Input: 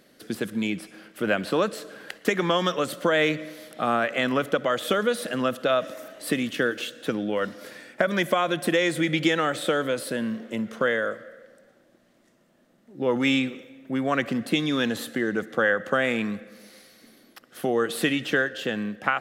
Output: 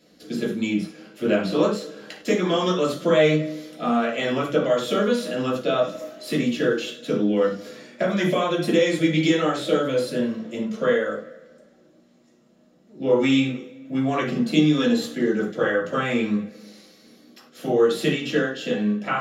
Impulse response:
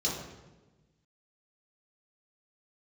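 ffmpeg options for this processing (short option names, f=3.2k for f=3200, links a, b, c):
-filter_complex "[0:a]flanger=delay=4:depth=6.4:regen=-55:speed=0.27:shape=sinusoidal[a];[1:a]atrim=start_sample=2205,afade=t=out:st=0.16:d=0.01,atrim=end_sample=7497[b];[a][b]afir=irnorm=-1:irlink=0,volume=-2dB"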